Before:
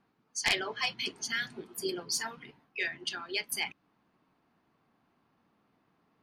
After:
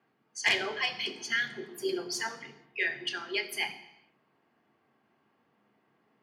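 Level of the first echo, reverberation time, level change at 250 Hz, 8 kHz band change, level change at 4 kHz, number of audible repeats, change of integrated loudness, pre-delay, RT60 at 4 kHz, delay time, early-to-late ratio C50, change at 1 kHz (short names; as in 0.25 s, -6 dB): none, 0.80 s, +2.5 dB, -4.0 dB, +1.0 dB, none, +2.0 dB, 3 ms, 0.80 s, none, 12.0 dB, +1.0 dB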